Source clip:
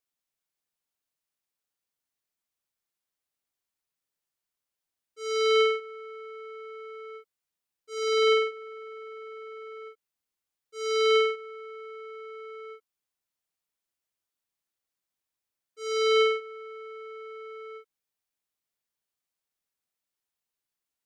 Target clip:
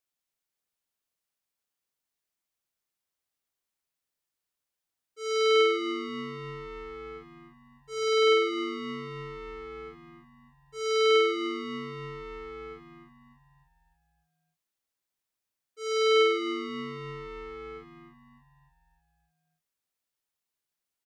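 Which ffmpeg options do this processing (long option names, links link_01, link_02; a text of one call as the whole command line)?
ffmpeg -i in.wav -filter_complex "[0:a]asplit=7[link_01][link_02][link_03][link_04][link_05][link_06][link_07];[link_02]adelay=295,afreqshift=-100,volume=-11dB[link_08];[link_03]adelay=590,afreqshift=-200,volume=-16.4dB[link_09];[link_04]adelay=885,afreqshift=-300,volume=-21.7dB[link_10];[link_05]adelay=1180,afreqshift=-400,volume=-27.1dB[link_11];[link_06]adelay=1475,afreqshift=-500,volume=-32.4dB[link_12];[link_07]adelay=1770,afreqshift=-600,volume=-37.8dB[link_13];[link_01][link_08][link_09][link_10][link_11][link_12][link_13]amix=inputs=7:normalize=0" out.wav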